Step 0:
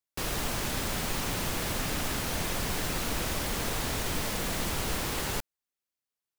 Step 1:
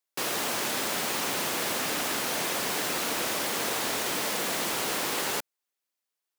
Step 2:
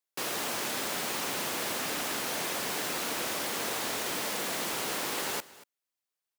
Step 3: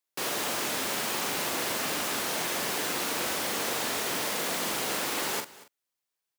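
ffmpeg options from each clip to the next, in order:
ffmpeg -i in.wav -af "highpass=300,volume=4dB" out.wav
ffmpeg -i in.wav -af "aecho=1:1:234:0.106,volume=-3.5dB" out.wav
ffmpeg -i in.wav -filter_complex "[0:a]asplit=2[link_01][link_02];[link_02]adelay=42,volume=-6dB[link_03];[link_01][link_03]amix=inputs=2:normalize=0,volume=1.5dB" out.wav

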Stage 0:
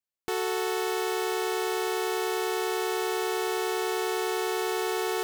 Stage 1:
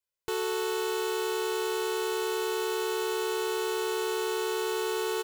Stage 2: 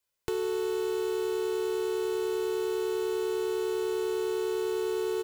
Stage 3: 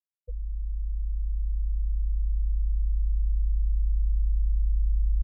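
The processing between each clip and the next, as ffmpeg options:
ffmpeg -i in.wav -filter_complex "[0:a]aecho=1:1:2:0.76,asplit=2[link_01][link_02];[link_02]alimiter=level_in=1.5dB:limit=-24dB:level=0:latency=1:release=21,volume=-1.5dB,volume=2.5dB[link_03];[link_01][link_03]amix=inputs=2:normalize=0,volume=-8dB" out.wav
ffmpeg -i in.wav -filter_complex "[0:a]acrossover=split=380[link_01][link_02];[link_02]acompressor=threshold=-45dB:ratio=8[link_03];[link_01][link_03]amix=inputs=2:normalize=0,volume=7dB" out.wav
ffmpeg -i in.wav -af "highpass=frequency=480:width_type=q:width=0.5412,highpass=frequency=480:width_type=q:width=1.307,lowpass=frequency=3200:width_type=q:width=0.5176,lowpass=frequency=3200:width_type=q:width=0.7071,lowpass=frequency=3200:width_type=q:width=1.932,afreqshift=-390,afftfilt=real='re*gte(hypot(re,im),0.0631)':imag='im*gte(hypot(re,im),0.0631)':win_size=1024:overlap=0.75,asubboost=boost=4.5:cutoff=200,volume=1.5dB" out.wav

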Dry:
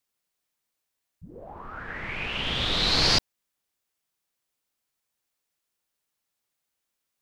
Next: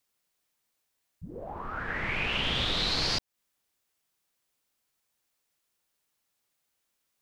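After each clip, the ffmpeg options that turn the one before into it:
ffmpeg -i in.wav -af "acompressor=threshold=-28dB:ratio=12,volume=3dB" out.wav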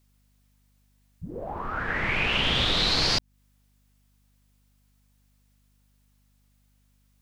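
ffmpeg -i in.wav -af "aeval=exprs='val(0)+0.000355*(sin(2*PI*50*n/s)+sin(2*PI*2*50*n/s)/2+sin(2*PI*3*50*n/s)/3+sin(2*PI*4*50*n/s)/4+sin(2*PI*5*50*n/s)/5)':channel_layout=same,volume=5dB" out.wav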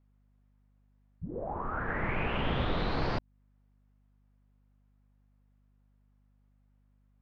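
ffmpeg -i in.wav -af "lowpass=1300,volume=-1.5dB" out.wav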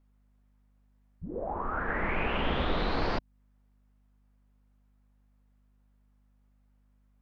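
ffmpeg -i in.wav -af "equalizer=frequency=120:width_type=o:width=0.71:gain=-10.5,volume=2.5dB" out.wav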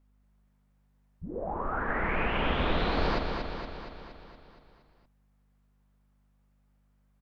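ffmpeg -i in.wav -af "aecho=1:1:234|468|702|936|1170|1404|1638|1872:0.531|0.319|0.191|0.115|0.0688|0.0413|0.0248|0.0149" out.wav

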